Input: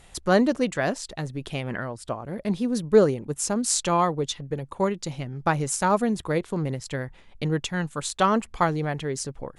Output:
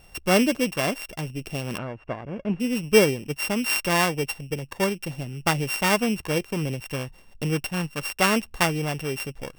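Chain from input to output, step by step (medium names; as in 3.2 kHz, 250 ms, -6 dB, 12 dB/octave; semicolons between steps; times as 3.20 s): sorted samples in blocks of 16 samples; 1.78–2.60 s: low-pass 1.6 kHz 12 dB/octave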